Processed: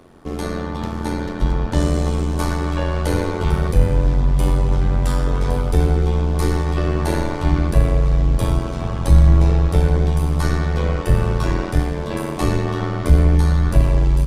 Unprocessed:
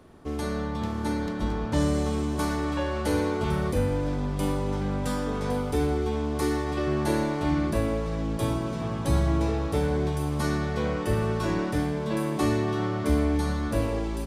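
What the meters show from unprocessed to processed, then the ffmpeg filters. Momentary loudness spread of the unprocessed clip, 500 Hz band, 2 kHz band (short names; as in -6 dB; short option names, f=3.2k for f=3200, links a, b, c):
4 LU, +3.5 dB, +4.5 dB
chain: -af "asubboost=boost=10:cutoff=57,tremolo=f=87:d=0.788,acontrast=82,volume=1.5dB"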